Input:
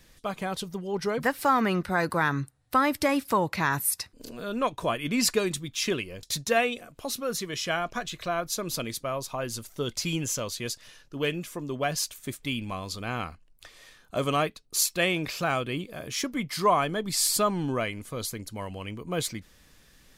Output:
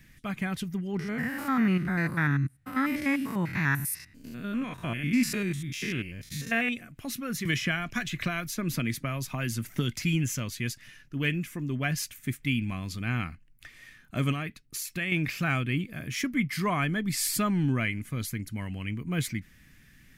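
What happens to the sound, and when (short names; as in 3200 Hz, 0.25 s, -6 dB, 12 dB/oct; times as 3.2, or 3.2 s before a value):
0.99–6.69 stepped spectrum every 0.1 s
7.45–10.03 three-band squash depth 100%
14.31–15.12 compressor 10:1, threshold -27 dBFS
whole clip: graphic EQ 125/250/500/1000/2000/4000/8000 Hz +7/+5/-11/-8/+9/-7/-4 dB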